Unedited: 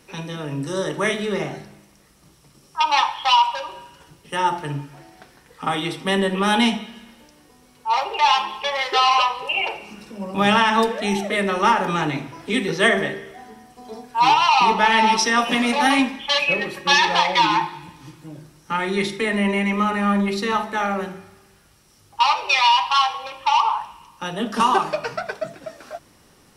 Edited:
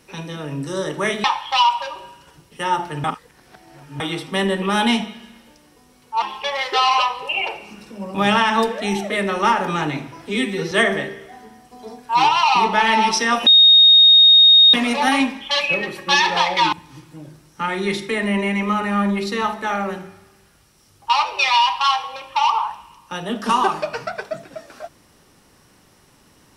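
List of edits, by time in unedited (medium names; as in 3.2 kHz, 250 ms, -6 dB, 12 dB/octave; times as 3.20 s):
1.24–2.97 s: delete
4.77–5.73 s: reverse
7.95–8.42 s: delete
12.48–12.77 s: stretch 1.5×
15.52 s: add tone 3.72 kHz -6.5 dBFS 1.27 s
17.51–17.83 s: delete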